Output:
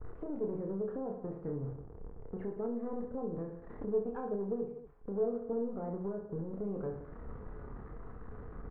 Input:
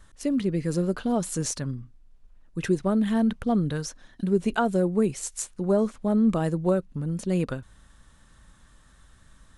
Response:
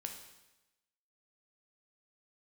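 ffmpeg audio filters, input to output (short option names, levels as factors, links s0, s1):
-filter_complex "[0:a]aeval=exprs='val(0)+0.5*0.0133*sgn(val(0))':c=same,bandreject=f=550:w=12,acompressor=threshold=0.0224:ratio=8,aresample=11025,aeval=exprs='clip(val(0),-1,0.0119)':c=same,aresample=44100,agate=range=0.0224:threshold=0.0126:ratio=3:detection=peak,lowpass=f=1100:w=0.5412,lowpass=f=1100:w=1.3066,asetrate=48510,aresample=44100,asplit=2[s0][s1];[s1]adelay=21,volume=0.266[s2];[s0][s2]amix=inputs=2:normalize=0,aecho=1:1:30|67.5|114.4|173|246.2:0.631|0.398|0.251|0.158|0.1,alimiter=level_in=2.51:limit=0.0631:level=0:latency=1:release=417,volume=0.398,equalizer=f=450:t=o:w=0.31:g=13.5,volume=1.12"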